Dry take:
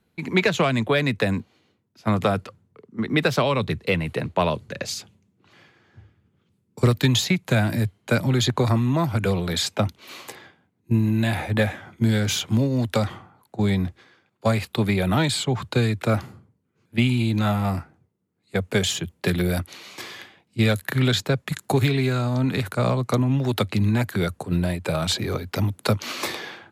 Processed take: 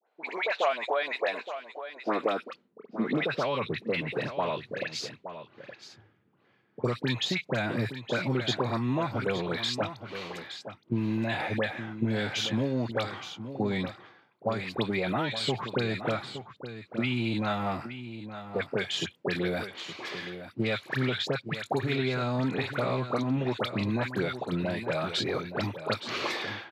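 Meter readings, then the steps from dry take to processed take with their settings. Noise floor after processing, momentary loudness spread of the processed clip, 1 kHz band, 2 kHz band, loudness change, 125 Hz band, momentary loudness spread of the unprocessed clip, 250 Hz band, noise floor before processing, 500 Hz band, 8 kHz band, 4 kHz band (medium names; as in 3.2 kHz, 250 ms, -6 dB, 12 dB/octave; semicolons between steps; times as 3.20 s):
-67 dBFS, 10 LU, -4.0 dB, -4.5 dB, -7.5 dB, -12.0 dB, 10 LU, -8.0 dB, -69 dBFS, -5.0 dB, -13.5 dB, -5.5 dB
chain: three-band isolator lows -17 dB, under 270 Hz, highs -20 dB, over 5.1 kHz; compression 4:1, threshold -27 dBFS, peak gain reduction 9.5 dB; high-pass sweep 670 Hz -> 120 Hz, 1.16–3.44 s; phase dispersion highs, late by 75 ms, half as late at 1.4 kHz; on a send: delay 869 ms -11 dB; on the sum: tape noise reduction on one side only decoder only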